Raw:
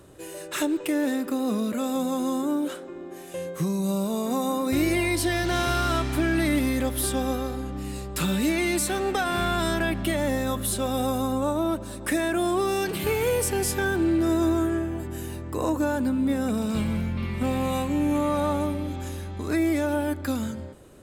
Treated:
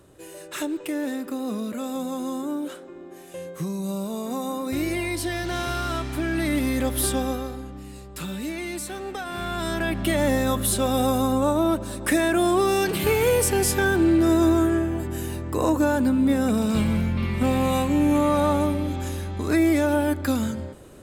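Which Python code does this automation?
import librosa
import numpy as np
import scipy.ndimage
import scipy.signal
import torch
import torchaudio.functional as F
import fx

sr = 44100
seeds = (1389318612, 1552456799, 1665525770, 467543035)

y = fx.gain(x, sr, db=fx.line((6.17, -3.0), (7.05, 3.0), (7.88, -7.0), (9.26, -7.0), (10.21, 4.0)))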